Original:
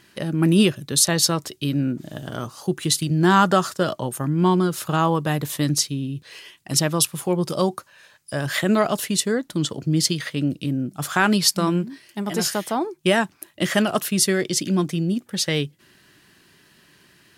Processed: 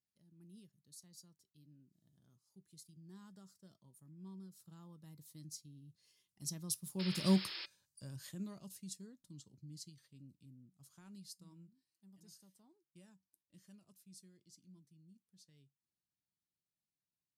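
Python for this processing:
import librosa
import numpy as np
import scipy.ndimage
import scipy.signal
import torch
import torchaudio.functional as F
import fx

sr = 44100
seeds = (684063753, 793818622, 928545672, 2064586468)

y = fx.doppler_pass(x, sr, speed_mps=15, closest_m=2.0, pass_at_s=7.36)
y = fx.band_shelf(y, sr, hz=2100.0, db=-10.0, octaves=1.7)
y = fx.spec_paint(y, sr, seeds[0], shape='noise', start_s=6.99, length_s=0.67, low_hz=310.0, high_hz=5400.0, level_db=-38.0)
y = fx.tone_stack(y, sr, knobs='6-0-2')
y = fx.comb_fb(y, sr, f0_hz=190.0, decay_s=0.16, harmonics='odd', damping=0.0, mix_pct=50)
y = y * 10.0 ** (15.0 / 20.0)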